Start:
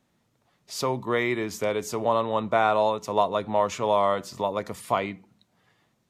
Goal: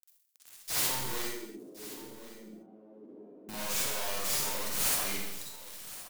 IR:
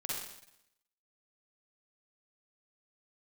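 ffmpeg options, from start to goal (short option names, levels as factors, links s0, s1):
-filter_complex "[0:a]acompressor=threshold=0.0355:ratio=6,alimiter=level_in=1.41:limit=0.0631:level=0:latency=1:release=152,volume=0.708,acontrast=24,acrusher=bits=6:dc=4:mix=0:aa=0.000001,asoftclip=type=tanh:threshold=0.0133,crystalizer=i=8:c=0,aeval=exprs='(mod(12.6*val(0)+1,2)-1)/12.6':c=same,asettb=1/sr,asplit=3[s0][s1][s2];[s0]atrim=end=1.224[s3];[s1]atrim=start=1.22:end=3.49,asetpts=PTS-STARTPTS,afade=t=in:d=0.004:c=qsin,afade=t=out:st=2.266:d=0.004:c=qsin,asuperpass=centerf=290:order=4:qfactor=1.8[s4];[s2]atrim=start=3.486[s5];[s3][s4]acrossfade=d=0.004:c1=hsin:c2=qsin[s6];[s6][s5]acrossfade=d=0.004:c1=qsin:c2=hsin,aecho=1:1:1068:0.158[s7];[1:a]atrim=start_sample=2205,afade=t=out:st=0.42:d=0.01,atrim=end_sample=18963[s8];[s7][s8]afir=irnorm=-1:irlink=0"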